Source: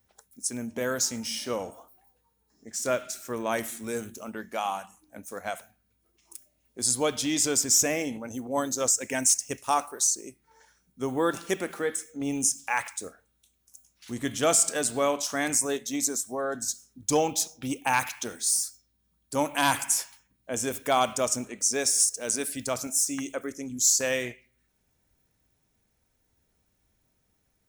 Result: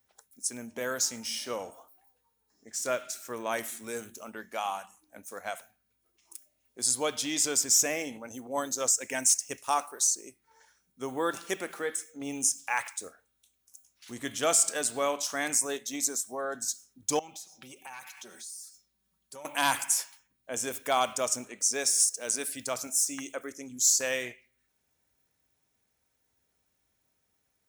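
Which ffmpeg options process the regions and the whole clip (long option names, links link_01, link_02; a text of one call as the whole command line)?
ffmpeg -i in.wav -filter_complex "[0:a]asettb=1/sr,asplit=3[link_01][link_02][link_03];[link_01]atrim=end=17.194[link_04];[link_02]atrim=start=17.19:end=19.45,asetpts=PTS-STARTPTS,afade=type=in:duration=0.004:curve=qsin,afade=type=out:start_time=2.256:duration=0.004:curve=qsin,aecho=1:1:5.3:0.7,atrim=end_sample=99666,acompressor=threshold=-42dB:ratio=4:attack=3.2:release=140:knee=1:detection=peak[link_05];[link_03]atrim=start=19.446[link_06];[link_04][link_05]acrossfade=duration=0.004:curve1=hsin:curve2=qsin[link_07];[link_07][link_06]acrossfade=duration=0.004:curve1=qsin:curve2=hsin,highpass=68,equalizer=frequency=130:width=0.38:gain=-8,volume=-1.5dB" out.wav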